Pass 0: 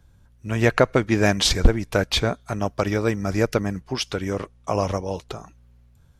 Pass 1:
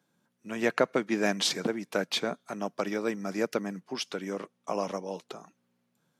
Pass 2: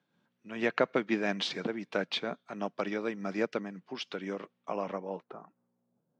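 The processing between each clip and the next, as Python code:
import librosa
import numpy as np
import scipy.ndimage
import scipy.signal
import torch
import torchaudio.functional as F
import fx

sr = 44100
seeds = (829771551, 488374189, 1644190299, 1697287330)

y1 = scipy.signal.sosfilt(scipy.signal.butter(6, 170.0, 'highpass', fs=sr, output='sos'), x)
y1 = y1 * librosa.db_to_amplitude(-7.5)
y2 = fx.filter_sweep_lowpass(y1, sr, from_hz=3500.0, to_hz=620.0, start_s=4.52, end_s=6.02, q=1.2)
y2 = fx.am_noise(y2, sr, seeds[0], hz=5.7, depth_pct=60)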